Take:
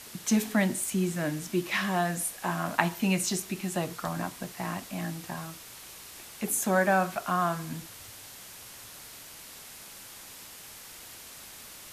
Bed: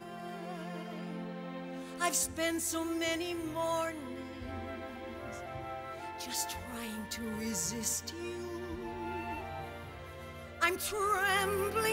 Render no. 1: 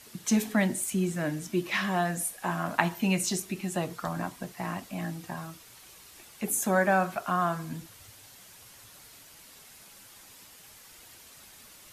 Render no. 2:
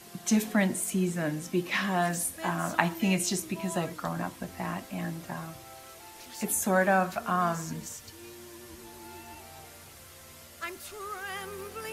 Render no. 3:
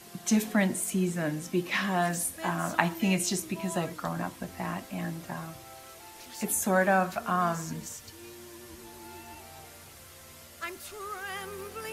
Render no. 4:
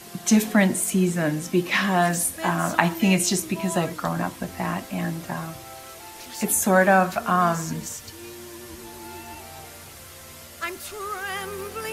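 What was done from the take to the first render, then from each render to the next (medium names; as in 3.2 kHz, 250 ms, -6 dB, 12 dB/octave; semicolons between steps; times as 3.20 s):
noise reduction 7 dB, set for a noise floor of -47 dBFS
add bed -8 dB
no audible change
trim +7 dB; peak limiter -2 dBFS, peak gain reduction 2.5 dB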